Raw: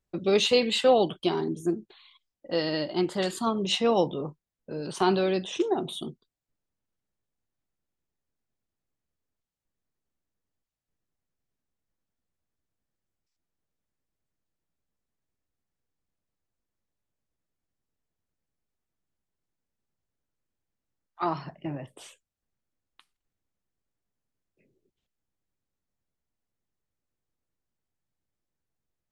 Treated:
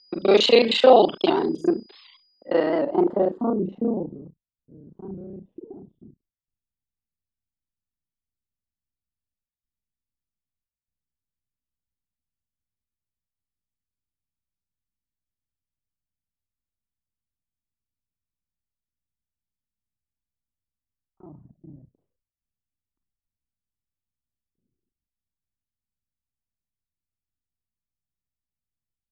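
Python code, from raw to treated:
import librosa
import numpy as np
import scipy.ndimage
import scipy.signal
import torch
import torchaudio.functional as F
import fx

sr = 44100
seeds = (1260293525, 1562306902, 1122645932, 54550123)

y = fx.local_reverse(x, sr, ms=31.0)
y = fx.dynamic_eq(y, sr, hz=830.0, q=0.72, threshold_db=-37.0, ratio=4.0, max_db=6)
y = y + 10.0 ** (-56.0 / 20.0) * np.sin(2.0 * np.pi * 4900.0 * np.arange(len(y)) / sr)
y = fx.low_shelf_res(y, sr, hz=180.0, db=-8.0, q=1.5)
y = fx.filter_sweep_lowpass(y, sr, from_hz=4200.0, to_hz=110.0, start_s=2.02, end_s=4.37, q=1.1)
y = fx.record_warp(y, sr, rpm=78.0, depth_cents=100.0)
y = F.gain(torch.from_numpy(y), 3.0).numpy()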